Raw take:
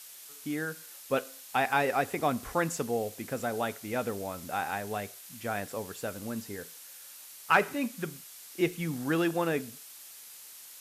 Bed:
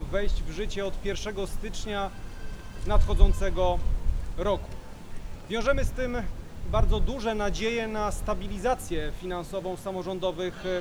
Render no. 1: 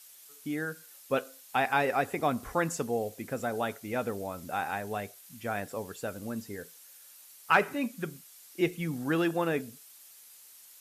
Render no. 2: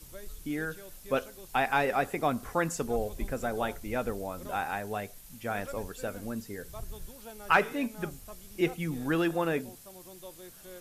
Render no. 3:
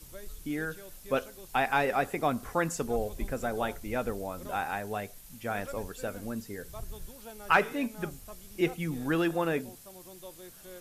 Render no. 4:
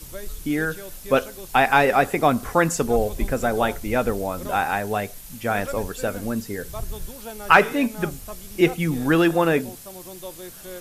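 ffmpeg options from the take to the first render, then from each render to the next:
-af "afftdn=nr=7:nf=-49"
-filter_complex "[1:a]volume=-18.5dB[a];[0:a][a]amix=inputs=2:normalize=0"
-af anull
-af "volume=10dB,alimiter=limit=-1dB:level=0:latency=1"

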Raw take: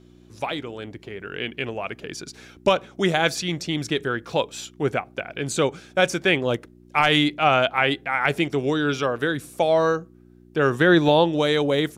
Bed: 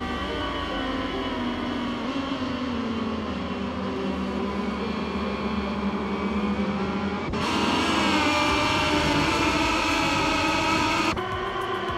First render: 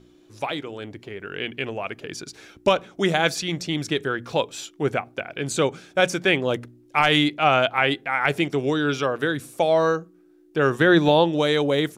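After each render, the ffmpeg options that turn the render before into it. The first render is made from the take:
-af "bandreject=f=60:t=h:w=4,bandreject=f=120:t=h:w=4,bandreject=f=180:t=h:w=4,bandreject=f=240:t=h:w=4"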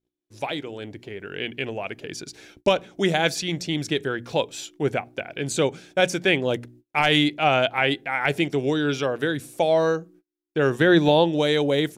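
-af "agate=range=-34dB:threshold=-48dB:ratio=16:detection=peak,equalizer=f=1.2k:t=o:w=0.52:g=-7"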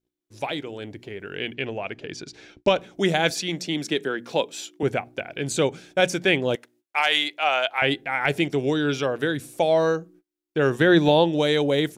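-filter_complex "[0:a]asettb=1/sr,asplit=3[a][b][c];[a]atrim=end=1.544[d];[b]atrim=start=1.54:end=2.76,asetpts=PTS-STARTPTS,afade=t=in:d=0.004:c=qsin,afade=t=out:st=1.216:d=0.004:c=qsin,lowpass=5.6k[e];[c]atrim=start=2.756[f];[d][e]acrossfade=d=0.004:c1=hsin:c2=qsin[g];[g][f]acrossfade=d=0.004:c1=qsin:c2=hsin,asettb=1/sr,asplit=3[h][i][j];[h]atrim=end=3.304[k];[i]atrim=start=3.3:end=4.83,asetpts=PTS-STARTPTS,afade=t=in:d=0.004:c=qsin,afade=t=out:st=1.526:d=0.004:c=qsin,highpass=f=170:w=0.5412,highpass=f=170:w=1.3066[l];[j]atrim=start=4.826[m];[k][l]acrossfade=d=0.004:c1=hsin:c2=qsin[n];[n][m]acrossfade=d=0.004:c1=qsin:c2=hsin,asettb=1/sr,asplit=3[o][p][q];[o]atrim=end=6.554[r];[p]atrim=start=6.55:end=7.82,asetpts=PTS-STARTPTS,afade=t=in:d=0.004:c=qsin,afade=t=out:st=1.266:d=0.004:c=qsin,highpass=710[s];[q]atrim=start=7.816[t];[r][s]acrossfade=d=0.004:c1=hsin:c2=qsin[u];[u][t]acrossfade=d=0.004:c1=qsin:c2=hsin"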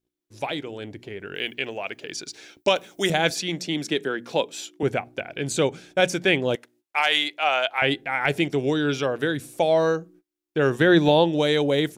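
-filter_complex "[0:a]asettb=1/sr,asplit=3[a][b][c];[a]atrim=end=1.354[d];[b]atrim=start=1.35:end=3.1,asetpts=PTS-STARTPTS,afade=t=in:d=0.004:c=qsin,afade=t=out:st=1.746:d=0.004:c=qsin,aemphasis=mode=production:type=bsi[e];[c]atrim=start=3.096[f];[d][e]acrossfade=d=0.004:c1=hsin:c2=qsin[g];[g][f]acrossfade=d=0.004:c1=qsin:c2=hsin"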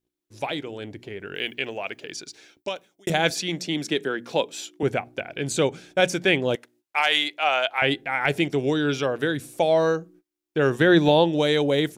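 -filter_complex "[0:a]asplit=2[a][b];[a]atrim=end=3.07,asetpts=PTS-STARTPTS,afade=t=out:st=1.89:d=1.18[c];[b]atrim=start=3.07,asetpts=PTS-STARTPTS,afade=t=in:d=0.004:c=hsin[d];[c][d]concat=n=2:v=0:a=1"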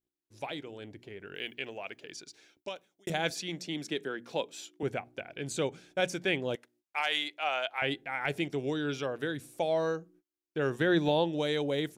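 -af "volume=-9.5dB"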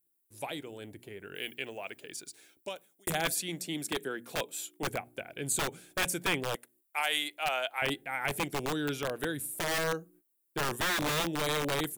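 -filter_complex "[0:a]acrossover=split=1000[a][b];[a]aeval=exprs='(mod(21.1*val(0)+1,2)-1)/21.1':c=same[c];[b]aexciter=amount=6.8:drive=6.3:freq=8k[d];[c][d]amix=inputs=2:normalize=0"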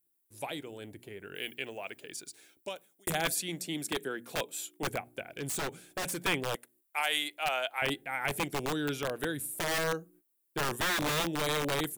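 -filter_complex "[0:a]asettb=1/sr,asplit=3[a][b][c];[a]atrim=end=5.344[d];[b]atrim=start=5.34:end=6.19,asetpts=PTS-STARTPTS,afade=t=in:d=0.004:c=qsin,afade=t=out:st=0.846:d=0.004:c=qsin,aeval=exprs='0.0335*(abs(mod(val(0)/0.0335+3,4)-2)-1)':c=same[e];[c]atrim=start=6.186[f];[d][e]acrossfade=d=0.004:c1=hsin:c2=qsin[g];[g][f]acrossfade=d=0.004:c1=qsin:c2=hsin"

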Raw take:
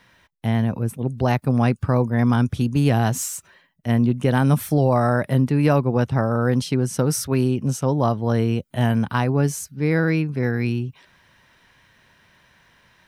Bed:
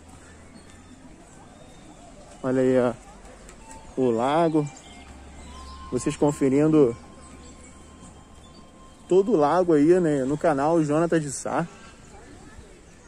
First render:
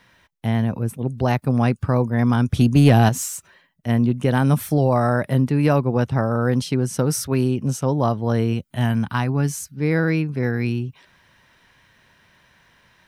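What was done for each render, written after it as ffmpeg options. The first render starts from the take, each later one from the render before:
-filter_complex "[0:a]asettb=1/sr,asplit=3[a][b][c];[a]atrim=end=2.534[d];[b]atrim=start=2.53:end=3.09,asetpts=PTS-STARTPTS,afade=t=in:d=0.004:c=qsin,afade=t=out:st=0.556:d=0.004:c=qsin,acontrast=50[e];[c]atrim=start=3.086[f];[d][e]acrossfade=d=0.004:c1=hsin:c2=qsin[g];[g][f]acrossfade=d=0.004:c1=qsin:c2=hsin,asettb=1/sr,asplit=3[h][i][j];[h]atrim=end=8.534[k];[i]atrim=start=8.53:end=9.74,asetpts=PTS-STARTPTS,afade=t=in:d=0.004:c=qsin,afade=t=out:st=1.206:d=0.004:c=qsin,equalizer=f=500:w=1.5:g=-7[l];[j]atrim=start=9.736[m];[k][l]acrossfade=d=0.004:c1=hsin:c2=qsin[n];[n][m]acrossfade=d=0.004:c1=qsin:c2=hsin"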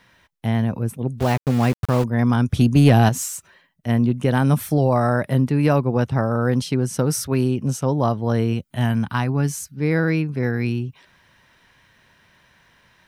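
-filter_complex "[0:a]asettb=1/sr,asplit=3[a][b][c];[a]atrim=end=1.204[d];[b]atrim=start=1.2:end=2.04,asetpts=PTS-STARTPTS,afade=t=in:d=0.004:c=qsin,afade=t=out:st=0.836:d=0.004:c=qsin,aeval=exprs='val(0)*gte(abs(val(0)),0.0531)':c=same[e];[c]atrim=start=2.036[f];[d][e]acrossfade=d=0.004:c1=hsin:c2=qsin[g];[g][f]acrossfade=d=0.004:c1=qsin:c2=hsin"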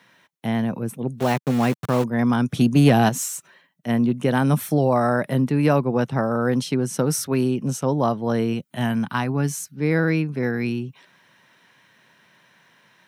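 -af "highpass=f=140:w=0.5412,highpass=f=140:w=1.3066,bandreject=f=4.8k:w=18"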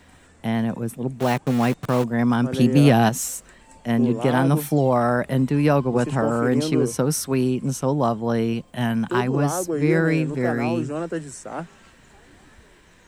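-filter_complex "[1:a]volume=-6dB[a];[0:a][a]amix=inputs=2:normalize=0"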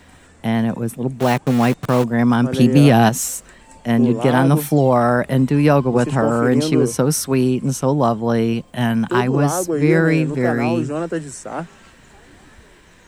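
-af "volume=4.5dB,alimiter=limit=-2dB:level=0:latency=1"

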